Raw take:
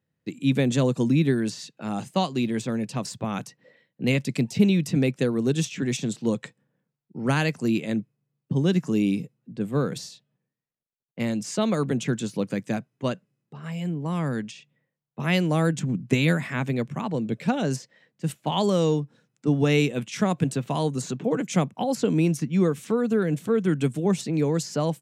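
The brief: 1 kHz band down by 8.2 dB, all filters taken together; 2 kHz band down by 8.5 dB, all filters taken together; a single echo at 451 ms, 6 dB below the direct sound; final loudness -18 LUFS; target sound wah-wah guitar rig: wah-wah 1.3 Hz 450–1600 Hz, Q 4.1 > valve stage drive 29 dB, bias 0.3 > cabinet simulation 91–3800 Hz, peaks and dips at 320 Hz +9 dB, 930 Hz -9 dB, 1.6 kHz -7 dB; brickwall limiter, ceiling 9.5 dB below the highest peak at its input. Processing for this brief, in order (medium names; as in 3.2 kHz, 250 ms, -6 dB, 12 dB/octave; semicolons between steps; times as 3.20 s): peaking EQ 1 kHz -5 dB; peaking EQ 2 kHz -7 dB; peak limiter -18 dBFS; delay 451 ms -6 dB; wah-wah 1.3 Hz 450–1600 Hz, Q 4.1; valve stage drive 29 dB, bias 0.3; cabinet simulation 91–3800 Hz, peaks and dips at 320 Hz +9 dB, 930 Hz -9 dB, 1.6 kHz -7 dB; trim +23 dB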